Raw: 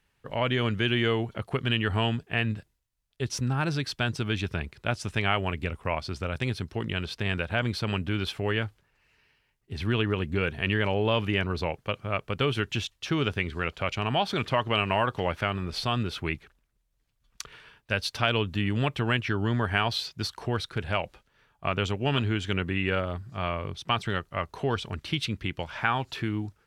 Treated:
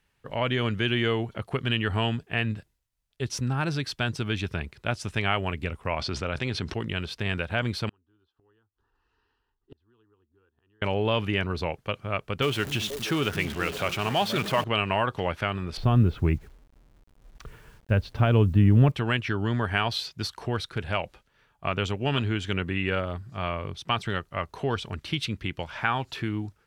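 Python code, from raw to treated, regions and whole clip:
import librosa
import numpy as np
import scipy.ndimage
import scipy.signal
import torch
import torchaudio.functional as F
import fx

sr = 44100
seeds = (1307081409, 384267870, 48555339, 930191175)

y = fx.chain(x, sr, fx.lowpass(hz=6000.0, slope=12),
    fx.low_shelf(hz=130.0, db=-6.5),
    fx.env_flatten(amount_pct=70), at=(5.99, 6.74))
y = fx.chain(y, sr, fx.lowpass(hz=3200.0, slope=12),
    fx.fixed_phaser(hz=600.0, stages=6),
    fx.gate_flip(shuts_db=-34.0, range_db=-35), at=(7.89, 10.82))
y = fx.chain(y, sr, fx.zero_step(step_db=-32.0),
    fx.low_shelf(hz=82.0, db=-12.0),
    fx.echo_stepped(ms=239, hz=180.0, octaves=1.4, feedback_pct=70, wet_db=-4.5), at=(12.42, 14.64))
y = fx.chain(y, sr, fx.lowpass(hz=2300.0, slope=6),
    fx.tilt_eq(slope=-3.5),
    fx.quant_dither(seeds[0], bits=10, dither='none'), at=(15.77, 18.92))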